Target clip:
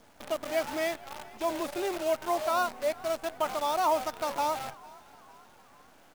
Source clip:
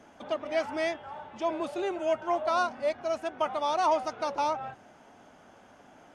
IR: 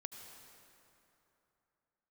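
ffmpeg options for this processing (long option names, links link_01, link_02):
-filter_complex "[0:a]acontrast=46,acrusher=bits=6:dc=4:mix=0:aa=0.000001,asplit=5[link_01][link_02][link_03][link_04][link_05];[link_02]adelay=452,afreqshift=54,volume=-22.5dB[link_06];[link_03]adelay=904,afreqshift=108,volume=-27.9dB[link_07];[link_04]adelay=1356,afreqshift=162,volume=-33.2dB[link_08];[link_05]adelay=1808,afreqshift=216,volume=-38.6dB[link_09];[link_01][link_06][link_07][link_08][link_09]amix=inputs=5:normalize=0,volume=-6.5dB"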